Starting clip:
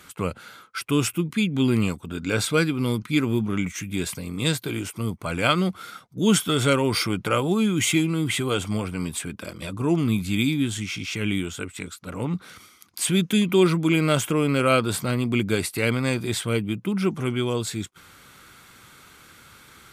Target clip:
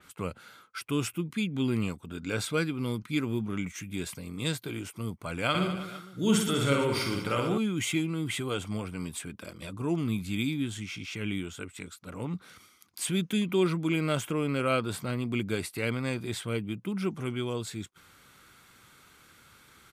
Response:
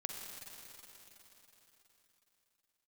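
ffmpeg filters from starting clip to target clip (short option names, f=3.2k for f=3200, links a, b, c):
-filter_complex "[0:a]asplit=3[a][b][c];[a]afade=t=out:st=5.53:d=0.02[d];[b]aecho=1:1:50|115|199.5|309.4|452.2:0.631|0.398|0.251|0.158|0.1,afade=t=in:st=5.53:d=0.02,afade=t=out:st=7.57:d=0.02[e];[c]afade=t=in:st=7.57:d=0.02[f];[d][e][f]amix=inputs=3:normalize=0,adynamicequalizer=threshold=0.0126:dfrequency=4100:dqfactor=0.7:tfrequency=4100:tqfactor=0.7:attack=5:release=100:ratio=0.375:range=2:mode=cutabove:tftype=highshelf,volume=-7.5dB"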